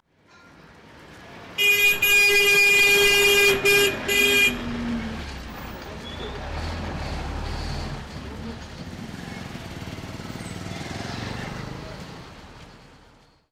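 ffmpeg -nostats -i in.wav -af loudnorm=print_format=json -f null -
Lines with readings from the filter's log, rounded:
"input_i" : "-18.9",
"input_tp" : "-9.1",
"input_lra" : "19.7",
"input_thresh" : "-32.8",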